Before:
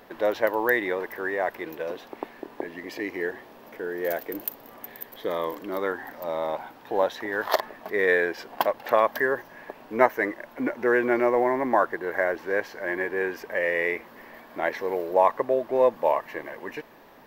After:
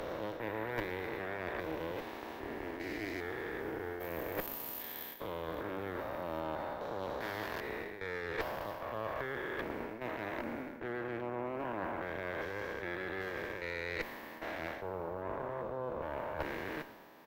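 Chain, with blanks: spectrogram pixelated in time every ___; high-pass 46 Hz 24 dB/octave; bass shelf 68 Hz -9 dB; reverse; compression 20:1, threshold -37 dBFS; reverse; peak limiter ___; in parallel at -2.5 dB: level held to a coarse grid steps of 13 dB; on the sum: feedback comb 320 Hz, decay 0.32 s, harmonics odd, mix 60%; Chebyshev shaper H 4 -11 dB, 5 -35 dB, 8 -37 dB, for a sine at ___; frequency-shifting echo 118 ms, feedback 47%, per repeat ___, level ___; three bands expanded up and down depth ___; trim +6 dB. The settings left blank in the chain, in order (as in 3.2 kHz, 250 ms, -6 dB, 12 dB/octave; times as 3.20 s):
400 ms, -28 dBFS, -30.5 dBFS, -33 Hz, -16.5 dB, 40%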